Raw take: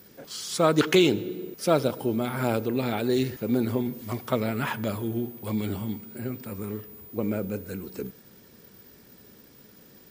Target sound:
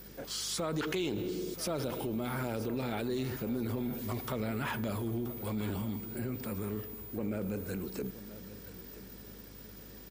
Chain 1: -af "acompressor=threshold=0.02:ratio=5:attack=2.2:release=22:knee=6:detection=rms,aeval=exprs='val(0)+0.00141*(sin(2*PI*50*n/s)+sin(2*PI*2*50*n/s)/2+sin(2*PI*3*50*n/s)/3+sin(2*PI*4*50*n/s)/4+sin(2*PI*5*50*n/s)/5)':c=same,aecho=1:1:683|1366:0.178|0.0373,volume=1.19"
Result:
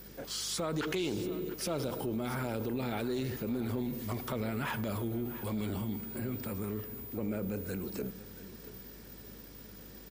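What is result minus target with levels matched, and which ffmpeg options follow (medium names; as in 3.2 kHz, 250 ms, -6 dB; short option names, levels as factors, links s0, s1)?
echo 295 ms early
-af "acompressor=threshold=0.02:ratio=5:attack=2.2:release=22:knee=6:detection=rms,aeval=exprs='val(0)+0.00141*(sin(2*PI*50*n/s)+sin(2*PI*2*50*n/s)/2+sin(2*PI*3*50*n/s)/3+sin(2*PI*4*50*n/s)/4+sin(2*PI*5*50*n/s)/5)':c=same,aecho=1:1:978|1956:0.178|0.0373,volume=1.19"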